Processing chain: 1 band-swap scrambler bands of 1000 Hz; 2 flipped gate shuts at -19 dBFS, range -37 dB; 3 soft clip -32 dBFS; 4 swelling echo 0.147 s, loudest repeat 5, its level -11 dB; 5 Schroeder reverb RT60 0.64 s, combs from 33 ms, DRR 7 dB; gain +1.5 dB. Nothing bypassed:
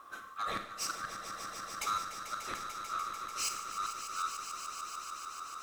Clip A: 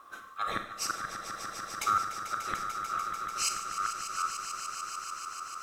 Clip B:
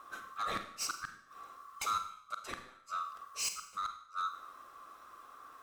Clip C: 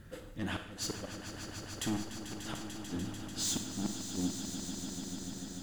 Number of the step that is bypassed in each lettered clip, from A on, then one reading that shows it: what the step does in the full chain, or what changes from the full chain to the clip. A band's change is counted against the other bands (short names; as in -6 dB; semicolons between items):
3, distortion -8 dB; 4, echo-to-direct 0.5 dB to -7.0 dB; 1, 250 Hz band +17.0 dB